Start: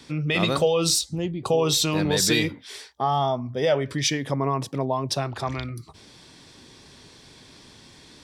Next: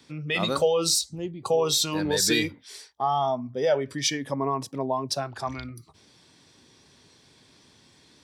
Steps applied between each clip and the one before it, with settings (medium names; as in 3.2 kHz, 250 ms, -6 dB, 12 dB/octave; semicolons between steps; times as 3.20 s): high-pass 65 Hz; spectral noise reduction 7 dB; trim -1 dB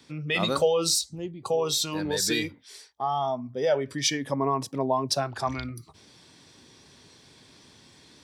gain riding within 4 dB 2 s; trim -1 dB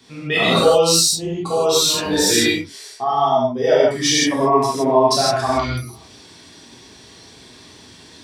gated-style reverb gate 190 ms flat, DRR -8 dB; trim +2 dB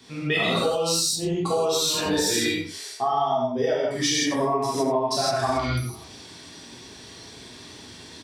compression 10:1, threshold -20 dBFS, peak gain reduction 12 dB; delay 86 ms -11.5 dB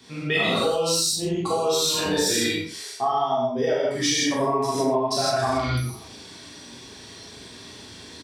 doubling 38 ms -7 dB